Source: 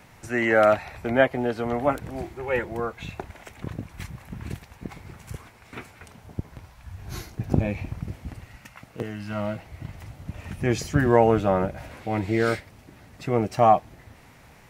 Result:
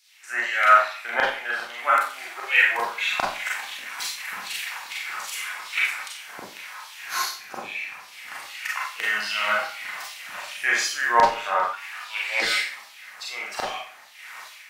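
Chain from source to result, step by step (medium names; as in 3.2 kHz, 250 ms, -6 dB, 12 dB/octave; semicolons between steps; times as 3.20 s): level rider gain up to 15.5 dB; LFO high-pass saw down 2.5 Hz 970–4700 Hz; Schroeder reverb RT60 0.45 s, combs from 30 ms, DRR -4 dB; 11.73–12.42 s: frequency shift +210 Hz; trim -4.5 dB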